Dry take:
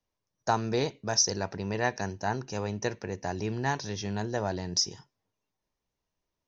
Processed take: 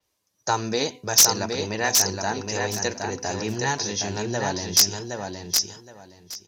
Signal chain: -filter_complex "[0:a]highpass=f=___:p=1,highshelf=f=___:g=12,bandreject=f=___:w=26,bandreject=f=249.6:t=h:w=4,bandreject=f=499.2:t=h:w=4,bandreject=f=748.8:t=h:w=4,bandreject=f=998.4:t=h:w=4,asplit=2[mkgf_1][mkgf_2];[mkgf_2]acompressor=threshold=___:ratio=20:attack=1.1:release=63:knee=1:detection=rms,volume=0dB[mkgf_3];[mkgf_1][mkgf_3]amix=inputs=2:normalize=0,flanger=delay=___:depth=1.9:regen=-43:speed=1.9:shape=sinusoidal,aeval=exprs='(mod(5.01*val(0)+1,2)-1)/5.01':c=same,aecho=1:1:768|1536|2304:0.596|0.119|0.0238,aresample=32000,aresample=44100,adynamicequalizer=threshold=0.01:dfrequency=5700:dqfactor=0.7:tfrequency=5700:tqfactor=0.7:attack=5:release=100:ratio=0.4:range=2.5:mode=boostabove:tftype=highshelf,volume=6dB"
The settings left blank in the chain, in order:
100, 3900, 5500, -40dB, 2.1